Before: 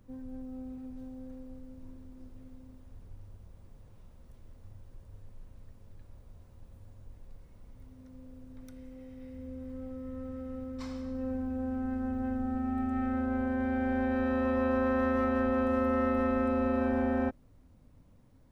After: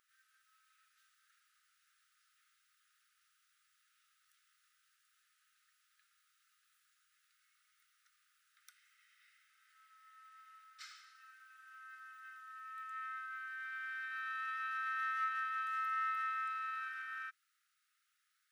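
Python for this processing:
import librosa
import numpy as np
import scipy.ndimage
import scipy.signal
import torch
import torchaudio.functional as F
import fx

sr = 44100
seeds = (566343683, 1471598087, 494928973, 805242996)

y = fx.brickwall_highpass(x, sr, low_hz=1200.0)
y = fx.notch(y, sr, hz=2300.0, q=27.0)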